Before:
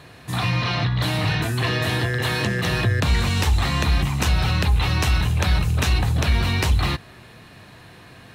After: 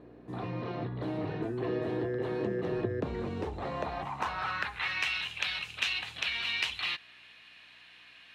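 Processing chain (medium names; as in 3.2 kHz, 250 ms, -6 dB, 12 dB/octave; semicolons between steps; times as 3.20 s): hum 60 Hz, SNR 20 dB; band-pass sweep 390 Hz -> 2.8 kHz, 3.41–5.19 s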